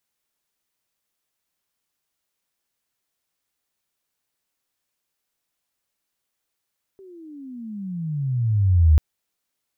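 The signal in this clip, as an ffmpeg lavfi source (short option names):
-f lavfi -i "aevalsrc='pow(10,(-9.5+32.5*(t/1.99-1))/20)*sin(2*PI*394*1.99/(-29*log(2)/12)*(exp(-29*log(2)/12*t/1.99)-1))':d=1.99:s=44100"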